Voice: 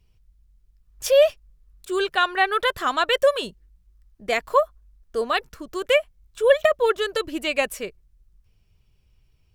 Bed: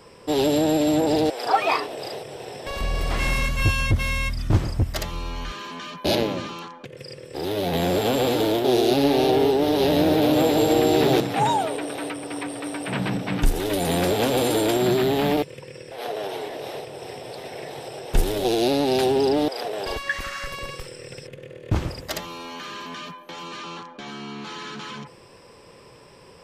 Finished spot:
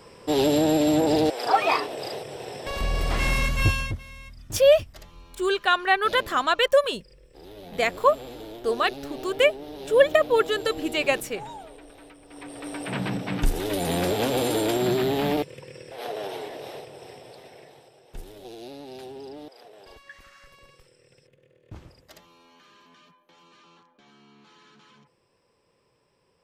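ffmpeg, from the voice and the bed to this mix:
-filter_complex "[0:a]adelay=3500,volume=0.944[s0];[1:a]volume=5.62,afade=t=out:st=3.66:d=0.34:silence=0.125893,afade=t=in:st=12.27:d=0.53:silence=0.16788,afade=t=out:st=16.27:d=1.66:silence=0.141254[s1];[s0][s1]amix=inputs=2:normalize=0"

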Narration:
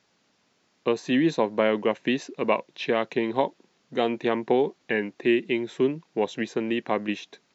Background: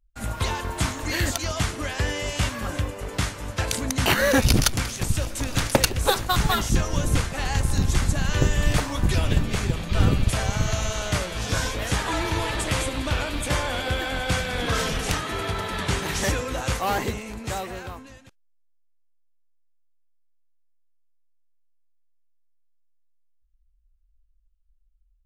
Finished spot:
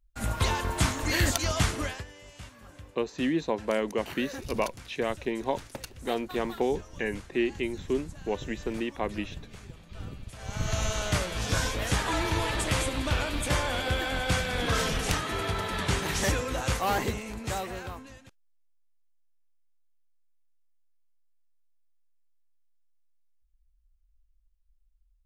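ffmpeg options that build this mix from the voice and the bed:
-filter_complex "[0:a]adelay=2100,volume=0.531[s0];[1:a]volume=7.94,afade=t=out:st=1.79:d=0.25:silence=0.0944061,afade=t=in:st=10.38:d=0.44:silence=0.11885[s1];[s0][s1]amix=inputs=2:normalize=0"

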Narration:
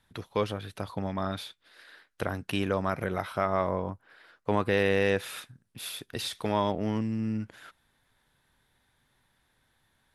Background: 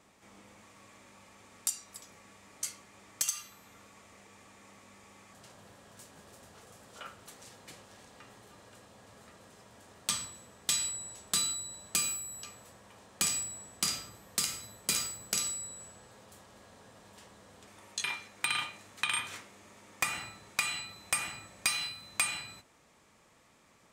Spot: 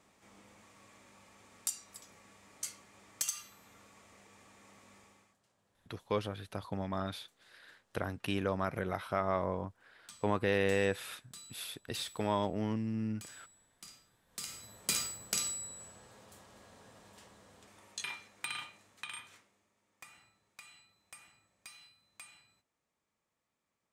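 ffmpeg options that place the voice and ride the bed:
-filter_complex "[0:a]adelay=5750,volume=0.562[s0];[1:a]volume=6.31,afade=t=out:st=4.97:d=0.4:silence=0.125893,afade=t=in:st=14.26:d=0.57:silence=0.105925,afade=t=out:st=16.93:d=2.77:silence=0.0944061[s1];[s0][s1]amix=inputs=2:normalize=0"

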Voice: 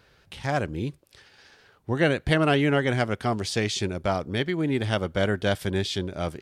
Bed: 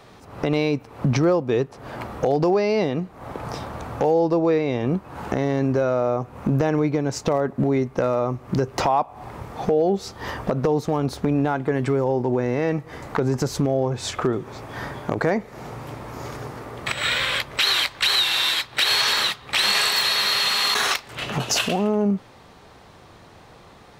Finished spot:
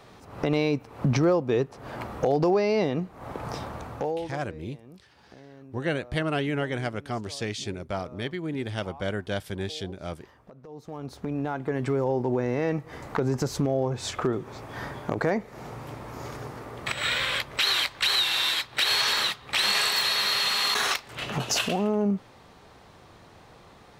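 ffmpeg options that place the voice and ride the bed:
-filter_complex "[0:a]adelay=3850,volume=0.501[s0];[1:a]volume=9.44,afade=t=out:st=3.67:d=0.72:silence=0.0668344,afade=t=in:st=10.66:d=1.38:silence=0.0749894[s1];[s0][s1]amix=inputs=2:normalize=0"

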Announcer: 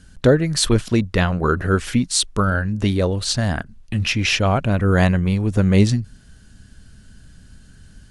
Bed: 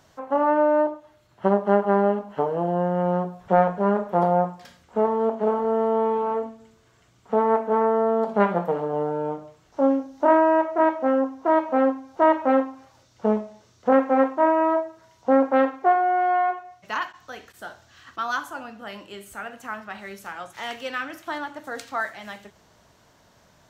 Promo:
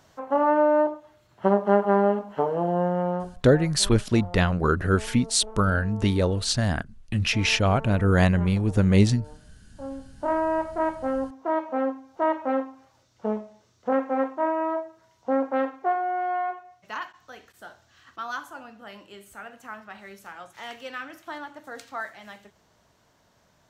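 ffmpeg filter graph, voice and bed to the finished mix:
-filter_complex "[0:a]adelay=3200,volume=0.668[s0];[1:a]volume=5.01,afade=t=out:st=2.87:d=0.67:silence=0.1,afade=t=in:st=9.77:d=0.75:silence=0.188365[s1];[s0][s1]amix=inputs=2:normalize=0"

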